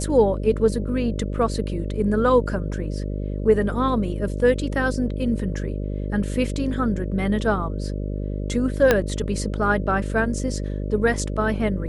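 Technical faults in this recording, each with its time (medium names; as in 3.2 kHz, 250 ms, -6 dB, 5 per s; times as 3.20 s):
buzz 50 Hz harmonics 12 -27 dBFS
8.91 s: pop -3 dBFS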